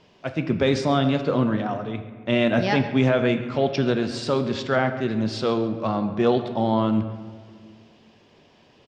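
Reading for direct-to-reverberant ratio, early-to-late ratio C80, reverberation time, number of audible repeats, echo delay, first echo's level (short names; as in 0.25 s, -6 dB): 7.5 dB, 10.5 dB, 1.8 s, 1, 0.138 s, -17.5 dB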